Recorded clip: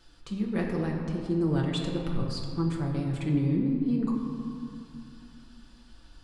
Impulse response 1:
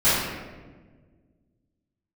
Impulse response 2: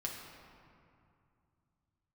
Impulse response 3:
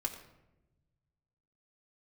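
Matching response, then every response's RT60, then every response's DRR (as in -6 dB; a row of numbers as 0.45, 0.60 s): 2; 1.5, 2.5, 0.95 s; -16.5, -2.0, 0.0 dB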